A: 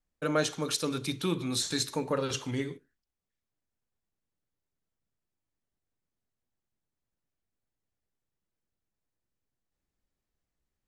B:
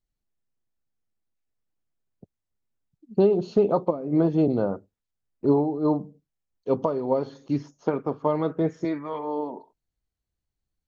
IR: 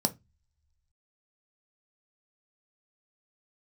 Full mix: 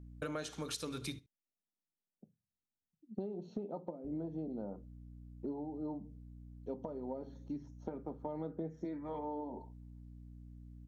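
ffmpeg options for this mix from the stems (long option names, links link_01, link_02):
-filter_complex "[0:a]aeval=exprs='val(0)+0.00316*(sin(2*PI*60*n/s)+sin(2*PI*2*60*n/s)/2+sin(2*PI*3*60*n/s)/3+sin(2*PI*4*60*n/s)/4+sin(2*PI*5*60*n/s)/5)':channel_layout=same,volume=-0.5dB,asplit=3[link_01][link_02][link_03];[link_01]atrim=end=1.19,asetpts=PTS-STARTPTS,afade=type=out:start_time=1.186:duration=0.004:curve=hsin[link_04];[link_02]atrim=start=1.19:end=4.04,asetpts=PTS-STARTPTS,volume=0[link_05];[link_03]atrim=start=4.04,asetpts=PTS-STARTPTS,afade=type=in:duration=0.004:curve=hsin[link_06];[link_04][link_05][link_06]concat=n=3:v=0:a=1,asplit=2[link_07][link_08];[link_08]volume=-23.5dB[link_09];[1:a]adynamicequalizer=threshold=0.0112:dfrequency=1600:dqfactor=0.7:tfrequency=1600:tqfactor=0.7:attack=5:release=100:ratio=0.375:range=2.5:mode=cutabove:tftype=highshelf,volume=-11dB,afade=type=in:start_time=8.26:duration=0.25:silence=0.421697,asplit=2[link_10][link_11];[link_11]volume=-8dB[link_12];[2:a]atrim=start_sample=2205[link_13];[link_12][link_13]afir=irnorm=-1:irlink=0[link_14];[link_09]aecho=0:1:75:1[link_15];[link_07][link_10][link_14][link_15]amix=inputs=4:normalize=0,acompressor=threshold=-38dB:ratio=6"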